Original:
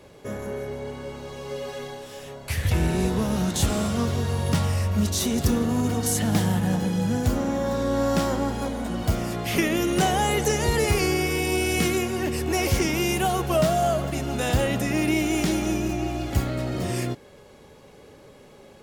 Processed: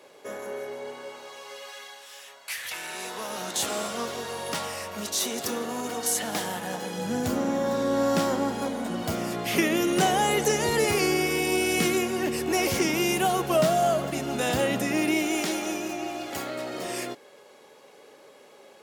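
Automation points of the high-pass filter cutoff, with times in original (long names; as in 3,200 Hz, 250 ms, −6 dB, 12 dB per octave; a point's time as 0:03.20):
0:00.89 430 Hz
0:01.74 1,200 Hz
0:02.83 1,200 Hz
0:03.59 460 Hz
0:06.86 460 Hz
0:07.26 190 Hz
0:14.79 190 Hz
0:15.54 420 Hz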